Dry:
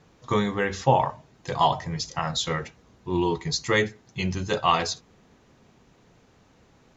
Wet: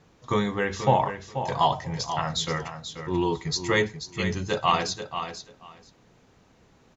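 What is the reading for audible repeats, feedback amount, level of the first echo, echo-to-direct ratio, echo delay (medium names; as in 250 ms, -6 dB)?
2, 16%, -9.5 dB, -9.5 dB, 485 ms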